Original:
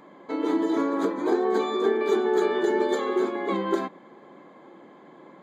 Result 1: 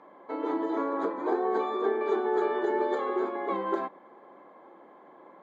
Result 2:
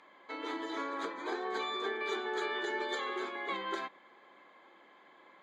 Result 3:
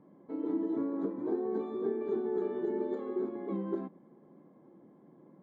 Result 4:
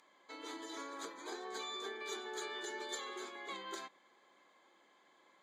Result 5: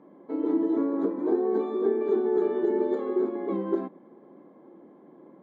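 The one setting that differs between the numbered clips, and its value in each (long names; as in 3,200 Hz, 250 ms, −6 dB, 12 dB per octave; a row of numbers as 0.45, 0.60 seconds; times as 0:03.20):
resonant band-pass, frequency: 830, 2,700, 110, 6,800, 280 Hertz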